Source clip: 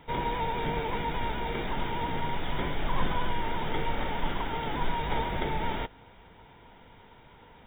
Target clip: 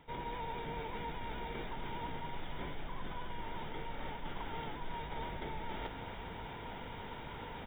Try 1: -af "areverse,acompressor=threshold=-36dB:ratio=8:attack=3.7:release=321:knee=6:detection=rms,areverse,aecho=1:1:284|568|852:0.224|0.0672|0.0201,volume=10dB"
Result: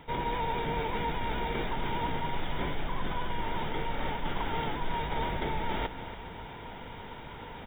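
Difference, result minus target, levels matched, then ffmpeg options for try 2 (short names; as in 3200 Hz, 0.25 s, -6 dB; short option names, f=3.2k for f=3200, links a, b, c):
compressor: peak gain reduction -9.5 dB
-af "areverse,acompressor=threshold=-47dB:ratio=8:attack=3.7:release=321:knee=6:detection=rms,areverse,aecho=1:1:284|568|852:0.224|0.0672|0.0201,volume=10dB"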